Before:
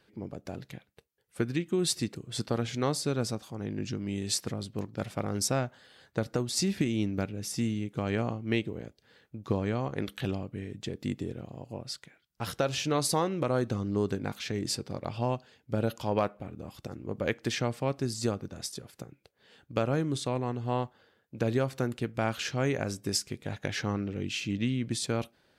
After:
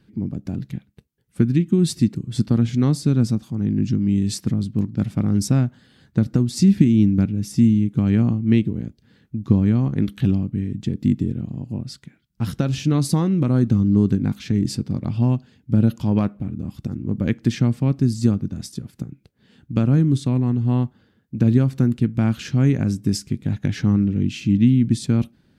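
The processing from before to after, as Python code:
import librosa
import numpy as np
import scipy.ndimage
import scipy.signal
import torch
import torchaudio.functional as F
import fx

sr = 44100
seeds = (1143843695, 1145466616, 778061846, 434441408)

y = fx.low_shelf_res(x, sr, hz=350.0, db=13.5, q=1.5)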